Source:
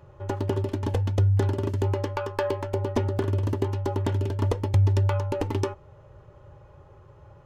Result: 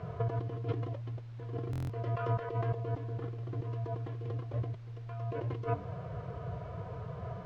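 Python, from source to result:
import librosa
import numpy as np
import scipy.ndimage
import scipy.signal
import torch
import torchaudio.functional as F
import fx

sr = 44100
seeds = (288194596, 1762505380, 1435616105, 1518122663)

y = scipy.signal.sosfilt(scipy.signal.butter(4, 48.0, 'highpass', fs=sr, output='sos'), x)
y = fx.high_shelf(y, sr, hz=5200.0, db=-9.0)
y = fx.hum_notches(y, sr, base_hz=60, count=4)
y = fx.over_compress(y, sr, threshold_db=-37.0, ratio=-1.0)
y = fx.pitch_keep_formants(y, sr, semitones=3.0)
y = fx.dmg_noise_colour(y, sr, seeds[0], colour='pink', level_db=-60.0)
y = fx.air_absorb(y, sr, metres=180.0)
y = fx.buffer_glitch(y, sr, at_s=(1.71,), block=1024, repeats=7)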